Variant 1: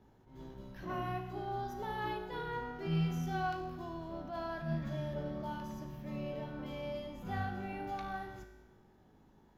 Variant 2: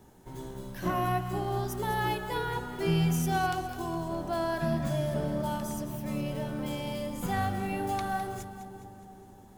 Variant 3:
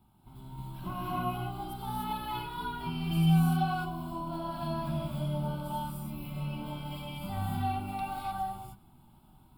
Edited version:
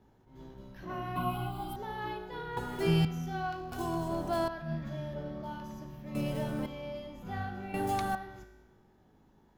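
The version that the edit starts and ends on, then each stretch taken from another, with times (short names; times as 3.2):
1
1.16–1.76 from 3
2.57–3.05 from 2
3.72–4.48 from 2
6.15–6.66 from 2
7.74–8.15 from 2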